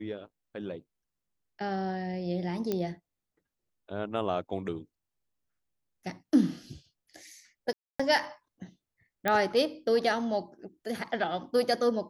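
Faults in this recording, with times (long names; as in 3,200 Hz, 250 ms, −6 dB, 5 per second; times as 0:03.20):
0:02.72: click −17 dBFS
0:07.73–0:08.00: drop-out 265 ms
0:09.28: click −13 dBFS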